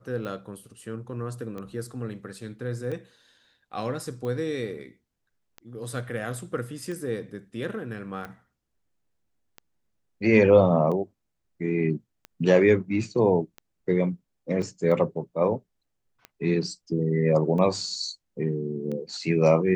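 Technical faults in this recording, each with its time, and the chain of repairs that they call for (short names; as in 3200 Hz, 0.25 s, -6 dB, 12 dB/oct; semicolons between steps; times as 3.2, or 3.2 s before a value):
tick 45 rpm -24 dBFS
14.62 gap 3.8 ms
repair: de-click; interpolate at 14.62, 3.8 ms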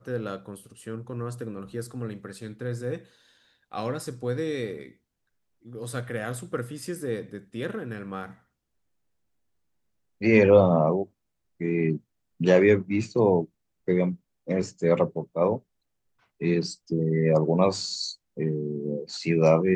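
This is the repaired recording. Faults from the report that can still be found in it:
none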